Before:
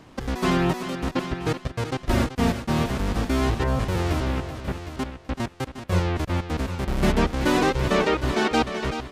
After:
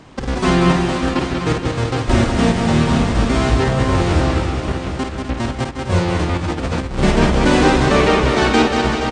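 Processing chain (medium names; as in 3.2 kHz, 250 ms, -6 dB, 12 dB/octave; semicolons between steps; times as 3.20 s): multi-tap echo 52/148/188/252/473/515 ms -5.5/-17/-4.5/-9.5/-9.5/-11.5 dB; 6.37–6.99 s: compressor with a negative ratio -26 dBFS, ratio -0.5; trim +5.5 dB; MP2 128 kbps 32 kHz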